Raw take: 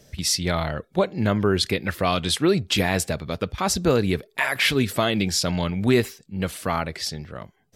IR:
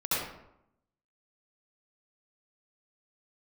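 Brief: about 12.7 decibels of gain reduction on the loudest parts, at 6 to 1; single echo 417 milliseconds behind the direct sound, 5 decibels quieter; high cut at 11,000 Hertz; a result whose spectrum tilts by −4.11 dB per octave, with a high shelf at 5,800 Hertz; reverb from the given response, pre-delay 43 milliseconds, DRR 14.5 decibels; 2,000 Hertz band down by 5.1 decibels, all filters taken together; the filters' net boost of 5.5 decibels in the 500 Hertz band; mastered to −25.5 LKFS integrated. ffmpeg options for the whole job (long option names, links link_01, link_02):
-filter_complex "[0:a]lowpass=11000,equalizer=frequency=500:width_type=o:gain=7.5,equalizer=frequency=2000:width_type=o:gain=-7.5,highshelf=frequency=5800:gain=5.5,acompressor=threshold=-24dB:ratio=6,aecho=1:1:417:0.562,asplit=2[link_01][link_02];[1:a]atrim=start_sample=2205,adelay=43[link_03];[link_02][link_03]afir=irnorm=-1:irlink=0,volume=-24dB[link_04];[link_01][link_04]amix=inputs=2:normalize=0,volume=2dB"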